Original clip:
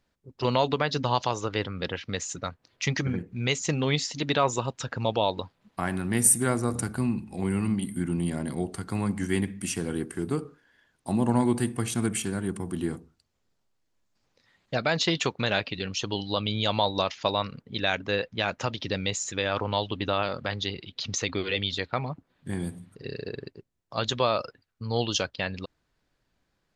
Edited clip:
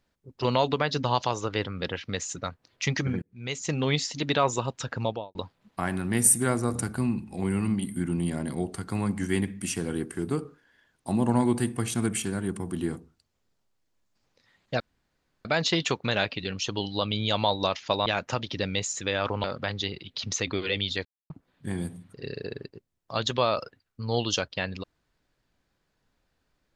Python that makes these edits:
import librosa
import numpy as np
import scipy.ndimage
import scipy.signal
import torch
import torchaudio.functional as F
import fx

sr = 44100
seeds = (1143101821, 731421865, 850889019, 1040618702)

y = fx.studio_fade_out(x, sr, start_s=4.98, length_s=0.37)
y = fx.edit(y, sr, fx.fade_in_span(start_s=3.22, length_s=0.61),
    fx.insert_room_tone(at_s=14.8, length_s=0.65),
    fx.cut(start_s=17.41, length_s=0.96),
    fx.cut(start_s=19.75, length_s=0.51),
    fx.silence(start_s=21.87, length_s=0.25), tone=tone)